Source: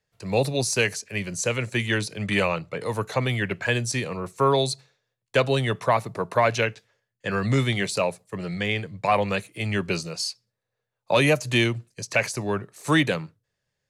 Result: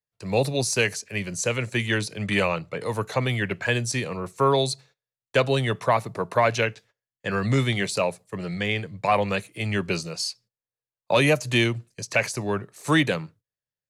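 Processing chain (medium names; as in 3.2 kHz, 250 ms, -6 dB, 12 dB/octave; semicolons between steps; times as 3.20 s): gate -51 dBFS, range -18 dB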